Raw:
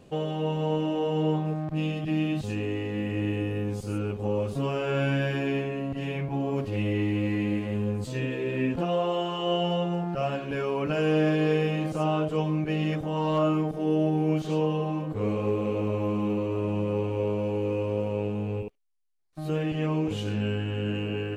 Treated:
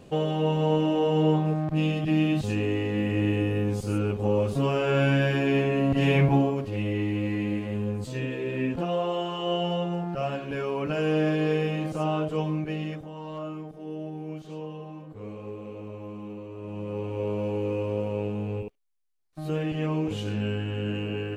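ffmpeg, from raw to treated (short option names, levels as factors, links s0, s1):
-af "volume=12.6,afade=t=in:st=5.47:d=0.79:silence=0.421697,afade=t=out:st=6.26:d=0.29:silence=0.251189,afade=t=out:st=12.5:d=0.64:silence=0.298538,afade=t=in:st=16.57:d=0.86:silence=0.281838"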